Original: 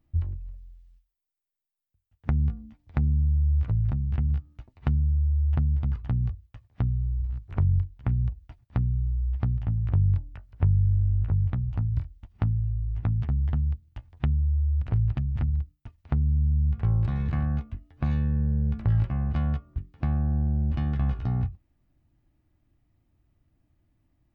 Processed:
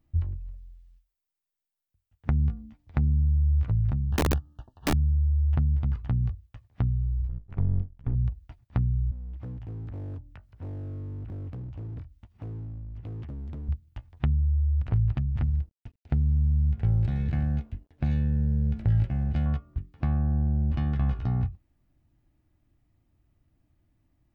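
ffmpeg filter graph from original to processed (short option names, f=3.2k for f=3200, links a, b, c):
-filter_complex "[0:a]asettb=1/sr,asplit=3[a][b][c];[a]atrim=end=4.094[d];[b]atrim=start=4.09:end=4.94,asetpts=PTS-STARTPTS,afade=t=in:d=0.004:c=qsin,afade=t=out:st=0.846:d=0.004:c=qsin,asuperstop=centerf=2200:order=20:qfactor=2.5,equalizer=f=850:w=1.4:g=6.5,aeval=exprs='(mod(8.41*val(0)+1,2)-1)/8.41':c=same[e];[c]atrim=start=4.936[f];[d][e]acrossfade=d=0.004:c1=hsin:c2=qsin[g];[g][f]acrossfade=d=0.004:c1=qsin:c2=hsin,asettb=1/sr,asplit=3[h][i][j];[h]atrim=end=7.284[k];[i]atrim=start=7.28:end=8.15,asetpts=PTS-STARTPTS,afade=t=in:d=0.004:c=qsin,afade=t=out:st=0.866:d=0.004:c=qsin,aeval=exprs='if(lt(val(0),0),0.251*val(0),val(0))':c=same,highshelf=f=2.1k:g=-9.5[l];[j]atrim=start=8.146[m];[k][l]acrossfade=d=0.004:c1=hsin:c2=qsin[n];[n][m]acrossfade=d=0.004:c1=qsin:c2=hsin,asettb=1/sr,asplit=3[o][p][q];[o]atrim=end=9.114[r];[p]atrim=start=9.11:end=13.69,asetpts=PTS-STARTPTS,afade=t=in:d=0.004:c=qsin,afade=t=out:st=4.576:d=0.004:c=qsin,highpass=64,asoftclip=type=hard:threshold=-29dB,acompressor=threshold=-46dB:ratio=1.5:attack=3.2:release=140:knee=1:detection=peak[s];[q]atrim=start=13.686[t];[r][s]acrossfade=d=0.004:c1=hsin:c2=qsin[u];[u][t]acrossfade=d=0.004:c1=qsin:c2=hsin,asettb=1/sr,asplit=3[v][w][x];[v]atrim=end=15.424[y];[w]atrim=start=15.42:end=19.46,asetpts=PTS-STARTPTS,afade=t=in:d=0.004:c=qsin,afade=t=out:st=4.036:d=0.004:c=qsin,equalizer=f=1.1k:t=o:w=0.43:g=-14.5,aeval=exprs='sgn(val(0))*max(abs(val(0))-0.00119,0)':c=same[z];[x]atrim=start=19.456[aa];[y][z]acrossfade=d=0.004:c1=hsin:c2=qsin[ab];[ab][aa]acrossfade=d=0.004:c1=qsin:c2=hsin"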